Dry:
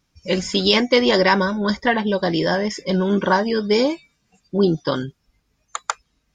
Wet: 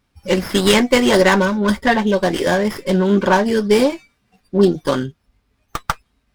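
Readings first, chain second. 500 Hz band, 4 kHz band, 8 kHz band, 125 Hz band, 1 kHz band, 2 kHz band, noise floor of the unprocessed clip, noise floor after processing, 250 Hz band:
+3.5 dB, -0.5 dB, +6.0 dB, +3.0 dB, +2.5 dB, +3.0 dB, -70 dBFS, -67 dBFS, +4.0 dB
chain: comb of notches 160 Hz; sliding maximum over 5 samples; trim +4.5 dB

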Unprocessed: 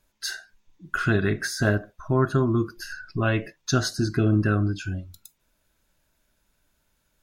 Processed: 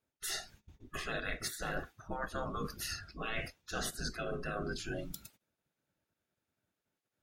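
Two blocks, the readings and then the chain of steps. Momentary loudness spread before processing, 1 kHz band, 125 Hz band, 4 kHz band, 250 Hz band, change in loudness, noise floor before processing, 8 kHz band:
11 LU, -9.5 dB, -22.0 dB, -7.5 dB, -19.5 dB, -14.5 dB, -72 dBFS, -7.0 dB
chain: gate -56 dBFS, range -19 dB; spectral gate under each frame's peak -15 dB weak; bass shelf 220 Hz +9.5 dB; band-stop 1 kHz, Q 8.2; reverse; compression 6:1, threshold -45 dBFS, peak gain reduction 17.5 dB; reverse; tape noise reduction on one side only decoder only; trim +9 dB

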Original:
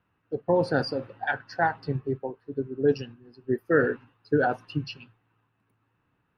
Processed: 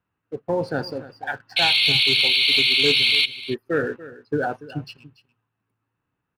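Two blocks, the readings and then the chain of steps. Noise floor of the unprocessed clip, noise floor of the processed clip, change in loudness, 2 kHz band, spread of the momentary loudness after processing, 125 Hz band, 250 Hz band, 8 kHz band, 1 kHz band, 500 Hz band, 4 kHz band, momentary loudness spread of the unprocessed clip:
-74 dBFS, -80 dBFS, +9.5 dB, +9.0 dB, 19 LU, -1.0 dB, -1.0 dB, no reading, -1.0 dB, -1.0 dB, +27.0 dB, 13 LU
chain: painted sound noise, 1.56–3.26 s, 2.1–4.5 kHz -17 dBFS; waveshaping leveller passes 1; delay 287 ms -17 dB; trim -4.5 dB

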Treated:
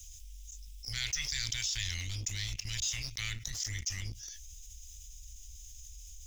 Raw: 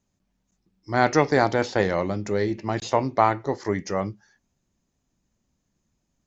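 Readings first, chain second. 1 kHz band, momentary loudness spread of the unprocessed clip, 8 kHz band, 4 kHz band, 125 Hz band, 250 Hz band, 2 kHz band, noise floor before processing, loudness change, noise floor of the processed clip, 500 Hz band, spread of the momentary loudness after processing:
-36.5 dB, 8 LU, no reading, +4.0 dB, -9.5 dB, -30.0 dB, -11.0 dB, -76 dBFS, -11.5 dB, -50 dBFS, under -40 dB, 17 LU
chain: inverse Chebyshev band-stop 210–1000 Hz, stop band 70 dB; peaking EQ 4.3 kHz -14.5 dB 0.3 oct; waveshaping leveller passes 2; level flattener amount 70%; trim -2.5 dB

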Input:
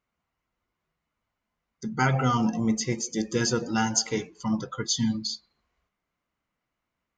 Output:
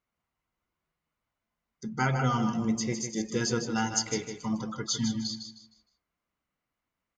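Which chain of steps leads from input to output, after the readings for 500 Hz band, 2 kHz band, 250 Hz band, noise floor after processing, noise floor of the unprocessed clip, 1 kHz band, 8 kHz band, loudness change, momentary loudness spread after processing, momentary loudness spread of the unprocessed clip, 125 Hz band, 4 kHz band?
-3.5 dB, -3.0 dB, -3.0 dB, under -85 dBFS, -84 dBFS, -3.5 dB, -3.5 dB, -3.5 dB, 8 LU, 8 LU, -3.0 dB, -3.5 dB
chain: feedback delay 155 ms, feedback 30%, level -8 dB; trim -4 dB

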